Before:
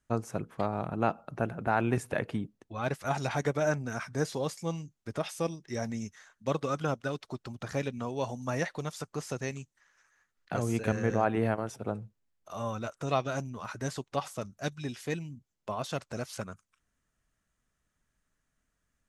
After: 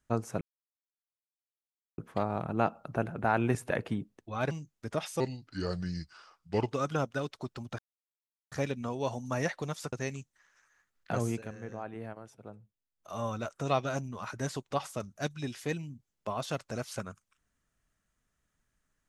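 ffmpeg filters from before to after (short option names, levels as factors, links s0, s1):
-filter_complex "[0:a]asplit=9[s0][s1][s2][s3][s4][s5][s6][s7][s8];[s0]atrim=end=0.41,asetpts=PTS-STARTPTS,afade=t=out:st=0.406:d=0.004:c=hsin,apad=pad_dur=1.57[s9];[s1]atrim=start=0.41:end=2.942,asetpts=PTS-STARTPTS,afade=t=in:d=0.004:c=hsin[s10];[s2]atrim=start=4.738:end=5.434[s11];[s3]atrim=start=5.43:end=6.62,asetpts=PTS-STARTPTS,asetrate=34398,aresample=44100[s12];[s4]atrim=start=6.616:end=7.68,asetpts=PTS-STARTPTS,afade=t=out:st=1.06:d=0.004:c=hsin,apad=pad_dur=0.73[s13];[s5]atrim=start=7.68:end=9.092,asetpts=PTS-STARTPTS,afade=t=in:d=0.004:c=hsin[s14];[s6]atrim=start=9.338:end=10.86,asetpts=PTS-STARTPTS,afade=t=out:st=1.322:d=0.2:silence=0.211349[s15];[s7]atrim=start=10.86:end=12.34,asetpts=PTS-STARTPTS,volume=0.211[s16];[s8]atrim=start=12.34,asetpts=PTS-STARTPTS,afade=t=in:d=0.2:silence=0.211349[s17];[s9][s10]concat=n=2:v=0:a=1[s18];[s18][s11]acrossfade=d=0.004:c1=hsin:c2=hsin[s19];[s19][s12]acrossfade=d=0.004:c1=hsin:c2=hsin[s20];[s13][s14]concat=n=2:v=0:a=1[s21];[s20][s21]acrossfade=d=0.004:c1=hsin:c2=hsin[s22];[s15][s16][s17]concat=n=3:v=0:a=1[s23];[s22][s23]acrossfade=d=0.004:c1=hsin:c2=hsin"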